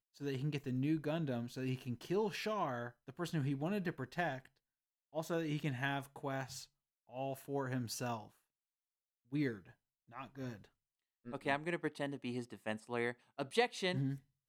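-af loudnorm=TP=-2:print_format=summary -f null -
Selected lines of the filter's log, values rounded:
Input Integrated:    -40.0 LUFS
Input True Peak:     -19.0 dBTP
Input LRA:             4.7 LU
Input Threshold:     -50.4 LUFS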